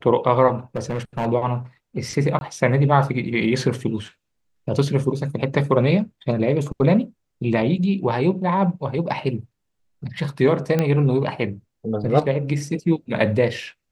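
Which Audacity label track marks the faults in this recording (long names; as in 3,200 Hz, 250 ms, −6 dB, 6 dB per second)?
0.760000	1.270000	clipping −19 dBFS
2.390000	2.410000	drop-out 21 ms
10.790000	10.790000	click −8 dBFS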